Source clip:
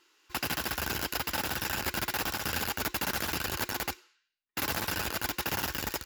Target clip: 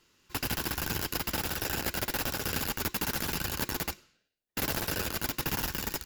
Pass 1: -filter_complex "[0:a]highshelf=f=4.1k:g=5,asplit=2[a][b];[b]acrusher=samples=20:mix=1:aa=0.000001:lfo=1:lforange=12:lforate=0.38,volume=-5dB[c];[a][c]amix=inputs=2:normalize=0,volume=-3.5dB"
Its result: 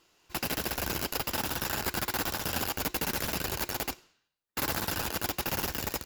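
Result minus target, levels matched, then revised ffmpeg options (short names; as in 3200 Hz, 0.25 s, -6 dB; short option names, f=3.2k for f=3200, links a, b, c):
decimation with a swept rate: distortion -5 dB
-filter_complex "[0:a]highshelf=f=4.1k:g=5,asplit=2[a][b];[b]acrusher=samples=50:mix=1:aa=0.000001:lfo=1:lforange=30:lforate=0.38,volume=-5dB[c];[a][c]amix=inputs=2:normalize=0,volume=-3.5dB"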